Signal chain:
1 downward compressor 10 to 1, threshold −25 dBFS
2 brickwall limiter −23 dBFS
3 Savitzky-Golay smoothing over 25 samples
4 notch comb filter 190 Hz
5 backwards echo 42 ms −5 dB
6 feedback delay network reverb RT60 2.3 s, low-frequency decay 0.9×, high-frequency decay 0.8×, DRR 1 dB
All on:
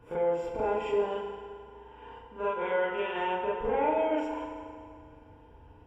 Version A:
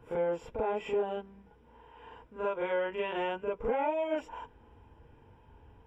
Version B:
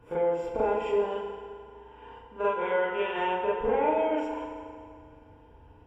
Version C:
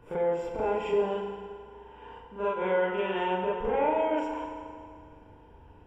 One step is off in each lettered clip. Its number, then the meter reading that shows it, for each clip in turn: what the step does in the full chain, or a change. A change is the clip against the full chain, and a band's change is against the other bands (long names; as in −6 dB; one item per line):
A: 6, change in momentary loudness spread −4 LU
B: 2, change in integrated loudness +2.0 LU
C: 4, 125 Hz band +3.0 dB